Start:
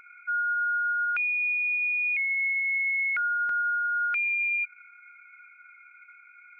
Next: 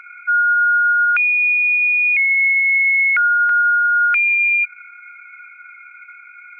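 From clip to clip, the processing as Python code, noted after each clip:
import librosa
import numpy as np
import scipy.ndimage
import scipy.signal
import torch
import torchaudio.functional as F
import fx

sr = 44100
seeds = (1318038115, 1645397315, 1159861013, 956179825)

y = fx.peak_eq(x, sr, hz=1700.0, db=12.5, octaves=3.0)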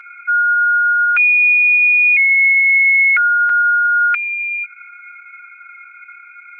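y = x + 0.67 * np.pad(x, (int(6.5 * sr / 1000.0), 0))[:len(x)]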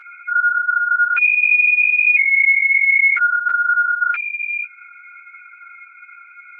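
y = fx.ensemble(x, sr)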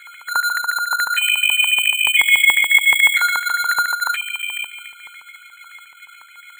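y = fx.echo_wet_highpass(x, sr, ms=251, feedback_pct=36, hz=2500.0, wet_db=-9)
y = np.repeat(y[::8], 8)[:len(y)]
y = fx.filter_lfo_highpass(y, sr, shape='square', hz=7.0, low_hz=940.0, high_hz=1900.0, q=5.6)
y = y * 10.0 ** (-6.0 / 20.0)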